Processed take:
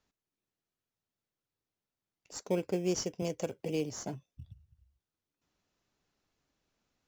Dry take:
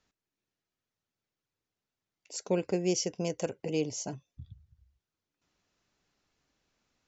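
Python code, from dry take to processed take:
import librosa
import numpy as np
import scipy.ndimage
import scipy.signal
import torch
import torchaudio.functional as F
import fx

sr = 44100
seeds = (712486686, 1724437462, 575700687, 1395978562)

p1 = fx.sample_hold(x, sr, seeds[0], rate_hz=2800.0, jitter_pct=0)
p2 = x + F.gain(torch.from_numpy(p1), -10.0).numpy()
p3 = fx.band_squash(p2, sr, depth_pct=40, at=(3.22, 4.26))
y = F.gain(torch.from_numpy(p3), -4.5).numpy()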